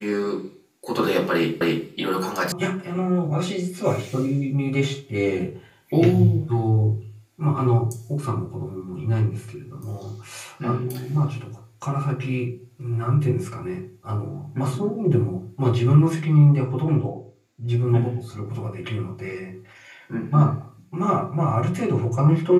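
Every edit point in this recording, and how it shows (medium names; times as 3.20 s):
1.61 s: repeat of the last 0.27 s
2.52 s: sound stops dead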